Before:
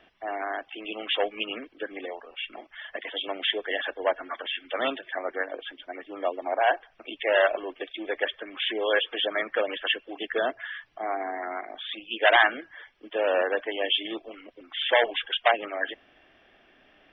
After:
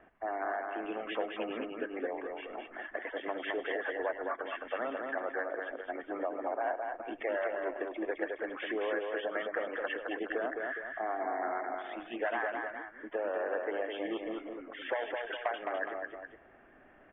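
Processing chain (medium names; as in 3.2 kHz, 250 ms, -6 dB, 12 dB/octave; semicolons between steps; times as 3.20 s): low-pass 1.8 kHz 24 dB/octave; compression 6:1, threshold -32 dBFS, peak gain reduction 15.5 dB; multi-tap echo 101/213/416 ms -17.5/-4/-10.5 dB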